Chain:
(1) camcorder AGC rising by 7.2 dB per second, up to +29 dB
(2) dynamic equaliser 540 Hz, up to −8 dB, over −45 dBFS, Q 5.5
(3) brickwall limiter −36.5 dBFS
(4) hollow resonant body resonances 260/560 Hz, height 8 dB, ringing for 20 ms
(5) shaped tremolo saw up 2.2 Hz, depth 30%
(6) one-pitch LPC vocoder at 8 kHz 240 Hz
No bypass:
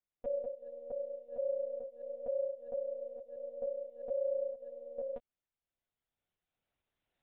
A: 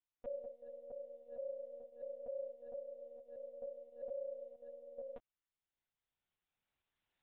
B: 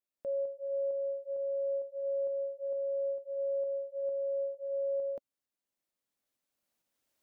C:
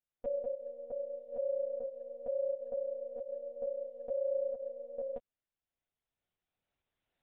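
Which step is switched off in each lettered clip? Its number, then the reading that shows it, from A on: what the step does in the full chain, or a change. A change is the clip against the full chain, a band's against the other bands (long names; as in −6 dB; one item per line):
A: 4, change in momentary loudness spread −2 LU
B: 6, change in crest factor −6.5 dB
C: 2, change in momentary loudness spread −2 LU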